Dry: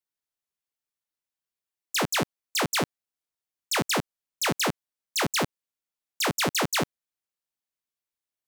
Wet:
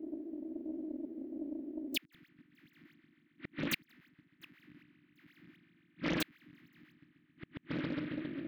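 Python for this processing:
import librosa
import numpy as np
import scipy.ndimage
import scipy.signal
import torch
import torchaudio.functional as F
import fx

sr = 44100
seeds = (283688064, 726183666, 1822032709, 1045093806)

y = fx.reverse_delay(x, sr, ms=105, wet_db=-9.0)
y = fx.over_compress(y, sr, threshold_db=-30.0, ratio=-1.0)
y = fx.notch(y, sr, hz=5700.0, q=12.0)
y = fx.level_steps(y, sr, step_db=12)
y = fx.echo_bbd(y, sr, ms=136, stages=4096, feedback_pct=77, wet_db=-10)
y = fx.dmg_noise_band(y, sr, seeds[0], low_hz=260.0, high_hz=610.0, level_db=-63.0)
y = fx.curve_eq(y, sr, hz=(100.0, 320.0, 460.0, 770.0, 1900.0, 8500.0, 13000.0), db=(0, 10, -18, -14, 7, -26, -7))
y = fx.hpss(y, sr, part='harmonic', gain_db=8)
y = fx.peak_eq(y, sr, hz=930.0, db=-7.0, octaves=2.0)
y = fx.gate_flip(y, sr, shuts_db=-33.0, range_db=-41)
y = fx.doppler_dist(y, sr, depth_ms=0.75)
y = y * 10.0 ** (12.5 / 20.0)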